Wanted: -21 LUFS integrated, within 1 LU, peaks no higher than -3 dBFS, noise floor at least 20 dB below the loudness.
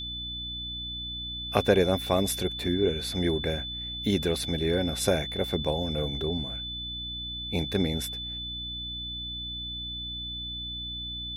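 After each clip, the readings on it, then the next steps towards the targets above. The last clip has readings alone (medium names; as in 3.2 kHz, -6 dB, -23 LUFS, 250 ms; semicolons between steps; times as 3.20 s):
hum 60 Hz; highest harmonic 300 Hz; hum level -40 dBFS; steady tone 3.5 kHz; tone level -34 dBFS; loudness -29.5 LUFS; peak level -7.0 dBFS; loudness target -21.0 LUFS
-> de-hum 60 Hz, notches 5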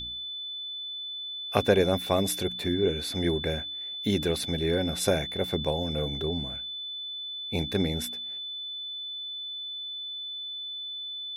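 hum not found; steady tone 3.5 kHz; tone level -34 dBFS
-> band-stop 3.5 kHz, Q 30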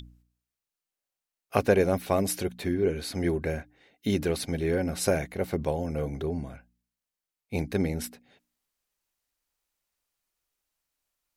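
steady tone not found; loudness -29.0 LUFS; peak level -7.5 dBFS; loudness target -21.0 LUFS
-> trim +8 dB; peak limiter -3 dBFS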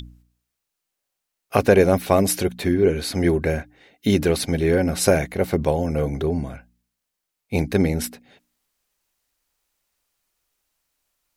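loudness -21.0 LUFS; peak level -3.0 dBFS; noise floor -81 dBFS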